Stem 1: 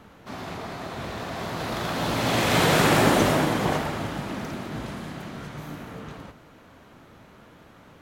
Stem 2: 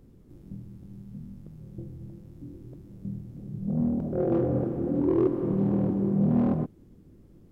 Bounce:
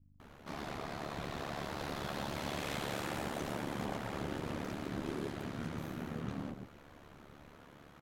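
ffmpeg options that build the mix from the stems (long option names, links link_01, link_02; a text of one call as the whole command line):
ffmpeg -i stem1.wav -i stem2.wav -filter_complex "[0:a]acompressor=threshold=-31dB:ratio=6,adelay=200,volume=-3dB[link_01];[1:a]aeval=exprs='sgn(val(0))*max(abs(val(0))-0.00447,0)':channel_layout=same,aeval=exprs='val(0)+0.00708*(sin(2*PI*50*n/s)+sin(2*PI*2*50*n/s)/2+sin(2*PI*3*50*n/s)/3+sin(2*PI*4*50*n/s)/4+sin(2*PI*5*50*n/s)/5)':channel_layout=same,volume=-16dB[link_02];[link_01][link_02]amix=inputs=2:normalize=0,aeval=exprs='val(0)*sin(2*PI*36*n/s)':channel_layout=same" out.wav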